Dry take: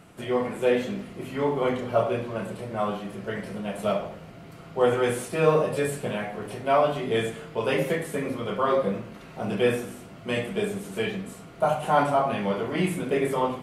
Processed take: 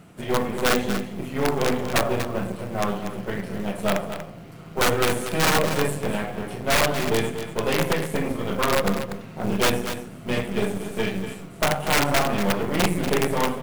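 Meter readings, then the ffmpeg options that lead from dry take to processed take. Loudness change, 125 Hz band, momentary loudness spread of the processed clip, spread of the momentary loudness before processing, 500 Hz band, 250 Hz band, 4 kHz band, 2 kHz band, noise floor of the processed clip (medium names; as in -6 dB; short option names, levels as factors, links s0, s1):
+2.5 dB, +4.0 dB, 10 LU, 12 LU, -0.5 dB, +3.5 dB, +9.5 dB, +6.5 dB, -41 dBFS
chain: -af "equalizer=f=170:t=o:w=1.5:g=5,aeval=exprs='(mod(5.01*val(0)+1,2)-1)/5.01':c=same,aeval=exprs='0.211*(cos(1*acos(clip(val(0)/0.211,-1,1)))-cos(1*PI/2))+0.0299*(cos(2*acos(clip(val(0)/0.211,-1,1)))-cos(2*PI/2))+0.0266*(cos(6*acos(clip(val(0)/0.211,-1,1)))-cos(6*PI/2))':c=same,acrusher=bits=6:mode=log:mix=0:aa=0.000001,aecho=1:1:239:0.316"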